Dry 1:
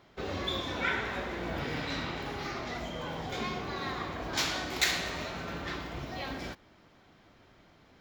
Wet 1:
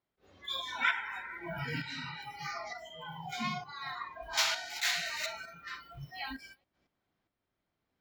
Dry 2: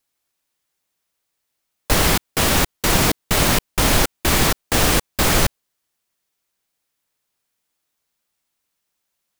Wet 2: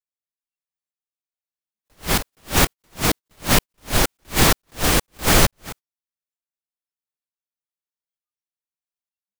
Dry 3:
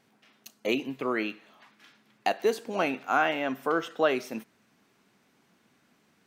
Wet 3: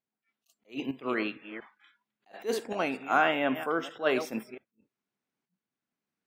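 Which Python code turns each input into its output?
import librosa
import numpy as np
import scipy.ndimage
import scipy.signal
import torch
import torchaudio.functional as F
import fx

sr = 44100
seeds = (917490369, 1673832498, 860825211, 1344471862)

y = fx.reverse_delay(x, sr, ms=229, wet_db=-13)
y = fx.noise_reduce_blind(y, sr, reduce_db=25)
y = fx.tremolo_shape(y, sr, shape='saw_up', hz=1.1, depth_pct=55)
y = fx.attack_slew(y, sr, db_per_s=280.0)
y = y * librosa.db_to_amplitude(3.0)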